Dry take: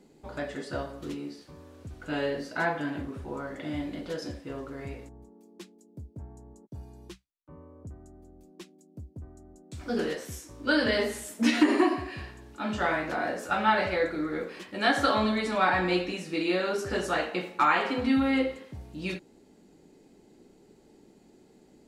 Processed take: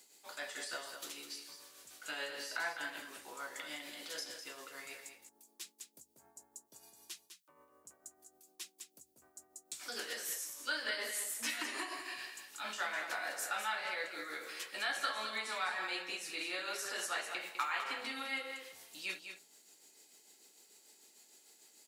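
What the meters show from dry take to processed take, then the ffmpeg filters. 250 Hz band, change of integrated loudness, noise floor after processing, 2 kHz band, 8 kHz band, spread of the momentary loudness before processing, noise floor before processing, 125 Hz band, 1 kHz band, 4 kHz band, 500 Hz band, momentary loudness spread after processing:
-25.5 dB, -11.5 dB, -72 dBFS, -7.5 dB, +3.5 dB, 22 LU, -59 dBFS, under -30 dB, -12.5 dB, -4.5 dB, -18.0 dB, 23 LU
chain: -filter_complex "[0:a]highpass=72,lowshelf=f=360:g=-9,bandreject=f=60:t=h:w=6,bandreject=f=120:t=h:w=6,bandreject=f=180:t=h:w=6,tremolo=f=6.7:d=0.51,acrossover=split=140|2100[a][b][c];[a]acompressor=threshold=-59dB:ratio=4[d];[b]acompressor=threshold=-34dB:ratio=4[e];[c]acompressor=threshold=-53dB:ratio=4[f];[d][e][f]amix=inputs=3:normalize=0,aderivative,asplit=2[g][h];[h]aecho=0:1:203:0.376[i];[g][i]amix=inputs=2:normalize=0,volume=13.5dB"

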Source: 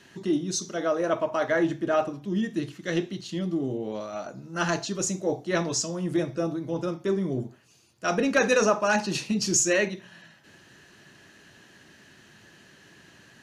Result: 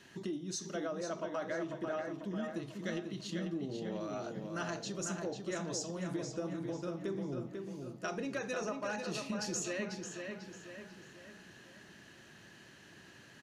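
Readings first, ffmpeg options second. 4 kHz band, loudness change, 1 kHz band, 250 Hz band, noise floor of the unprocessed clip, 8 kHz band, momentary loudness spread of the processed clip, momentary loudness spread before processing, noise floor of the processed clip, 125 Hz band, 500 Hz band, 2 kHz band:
-11.0 dB, -12.5 dB, -13.0 dB, -11.0 dB, -55 dBFS, -13.5 dB, 17 LU, 11 LU, -57 dBFS, -10.0 dB, -12.5 dB, -13.5 dB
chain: -filter_complex "[0:a]acompressor=threshold=-32dB:ratio=6,asplit=2[a][b];[b]adelay=494,lowpass=f=4.7k:p=1,volume=-5dB,asplit=2[c][d];[d]adelay=494,lowpass=f=4.7k:p=1,volume=0.49,asplit=2[e][f];[f]adelay=494,lowpass=f=4.7k:p=1,volume=0.49,asplit=2[g][h];[h]adelay=494,lowpass=f=4.7k:p=1,volume=0.49,asplit=2[i][j];[j]adelay=494,lowpass=f=4.7k:p=1,volume=0.49,asplit=2[k][l];[l]adelay=494,lowpass=f=4.7k:p=1,volume=0.49[m];[a][c][e][g][i][k][m]amix=inputs=7:normalize=0,volume=-4.5dB"

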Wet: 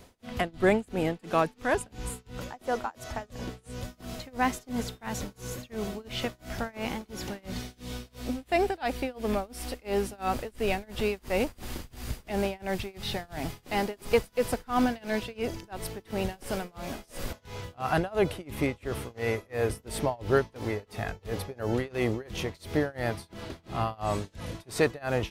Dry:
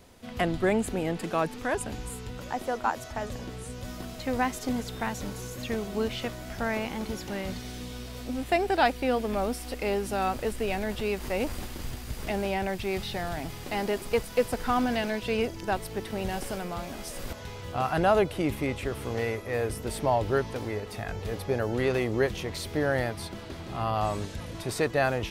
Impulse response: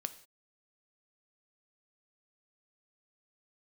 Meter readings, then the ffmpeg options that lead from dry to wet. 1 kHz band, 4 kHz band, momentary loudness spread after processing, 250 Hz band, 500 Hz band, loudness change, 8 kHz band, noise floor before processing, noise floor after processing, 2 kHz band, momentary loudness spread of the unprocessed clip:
-2.5 dB, -1.5 dB, 12 LU, -1.0 dB, -1.5 dB, -1.5 dB, -1.5 dB, -41 dBFS, -61 dBFS, -1.5 dB, 12 LU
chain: -af "tremolo=f=2.9:d=0.97,volume=3dB"

